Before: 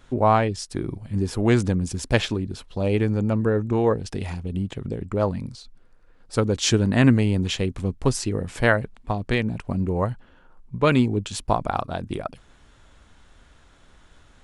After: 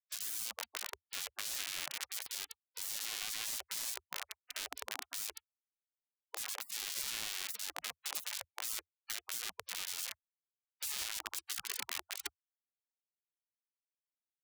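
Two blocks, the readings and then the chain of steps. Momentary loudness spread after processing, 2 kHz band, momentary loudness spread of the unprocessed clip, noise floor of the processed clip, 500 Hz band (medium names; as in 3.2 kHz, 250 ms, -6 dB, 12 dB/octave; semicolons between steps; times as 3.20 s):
6 LU, -14.5 dB, 11 LU, under -85 dBFS, -34.5 dB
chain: Schmitt trigger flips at -24 dBFS; spectral gate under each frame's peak -30 dB weak; trim +1 dB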